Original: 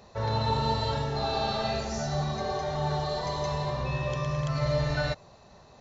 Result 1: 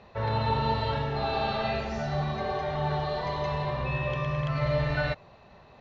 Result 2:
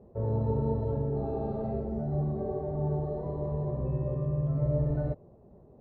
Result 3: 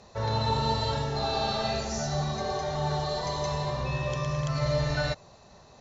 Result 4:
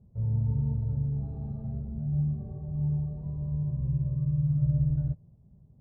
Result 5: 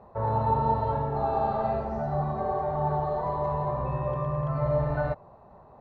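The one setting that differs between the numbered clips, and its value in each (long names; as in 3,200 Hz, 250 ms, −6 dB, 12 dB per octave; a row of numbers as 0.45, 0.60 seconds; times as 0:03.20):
low-pass with resonance, frequency: 2,700, 390, 7,500, 150, 980 Hertz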